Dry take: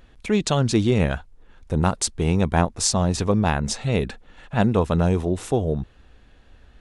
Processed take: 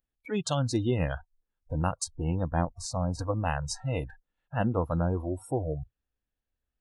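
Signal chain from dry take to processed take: spectral noise reduction 29 dB; 2.04–3.19 s: treble shelf 2.1 kHz -10.5 dB; trim -7 dB

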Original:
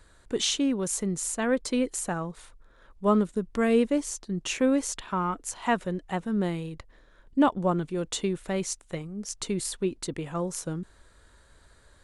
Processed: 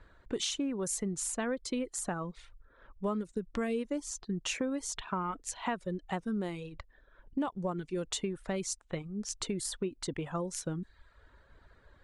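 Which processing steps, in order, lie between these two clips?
reverb removal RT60 0.71 s; compression 5:1, threshold -31 dBFS, peak gain reduction 13 dB; level-controlled noise filter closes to 2.3 kHz, open at -30 dBFS

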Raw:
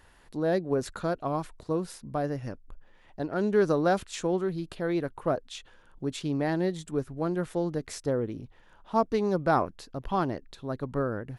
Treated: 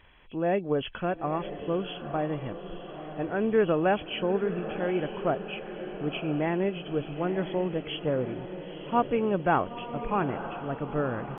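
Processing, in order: knee-point frequency compression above 2.1 kHz 4:1; pitch shift +1 st; echo that smears into a reverb 942 ms, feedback 57%, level -10.5 dB

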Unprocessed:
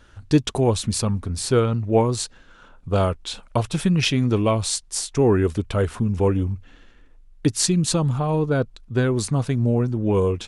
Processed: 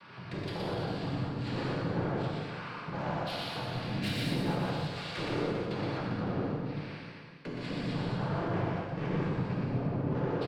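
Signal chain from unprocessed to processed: elliptic low-pass 3.2 kHz, stop band 40 dB; compression 5:1, threshold -36 dBFS, peak gain reduction 21 dB; hard clipper -25.5 dBFS, distortion -32 dB; noise-vocoded speech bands 8; saturation -38.5 dBFS, distortion -8 dB; reverse bouncing-ball echo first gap 120 ms, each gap 1.1×, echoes 5; gated-style reverb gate 260 ms flat, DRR -5 dB; trim +2.5 dB

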